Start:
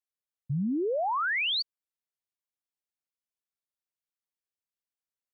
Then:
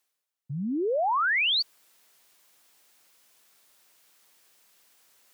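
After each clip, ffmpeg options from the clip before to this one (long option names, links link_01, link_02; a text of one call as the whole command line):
ffmpeg -i in.wav -af "highpass=frequency=340:poles=1,areverse,acompressor=mode=upward:threshold=-44dB:ratio=2.5,areverse,volume=4dB" out.wav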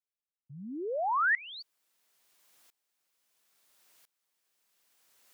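ffmpeg -i in.wav -af "aeval=exprs='val(0)*pow(10,-23*if(lt(mod(-0.74*n/s,1),2*abs(-0.74)/1000),1-mod(-0.74*n/s,1)/(2*abs(-0.74)/1000),(mod(-0.74*n/s,1)-2*abs(-0.74)/1000)/(1-2*abs(-0.74)/1000))/20)':channel_layout=same" out.wav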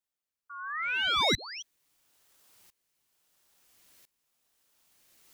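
ffmpeg -i in.wav -af "aeval=exprs='clip(val(0),-1,0.0211)':channel_layout=same,bandreject=frequency=2100:width=9.2,aeval=exprs='val(0)*sin(2*PI*1800*n/s+1800*0.3/0.88*sin(2*PI*0.88*n/s))':channel_layout=same,volume=6.5dB" out.wav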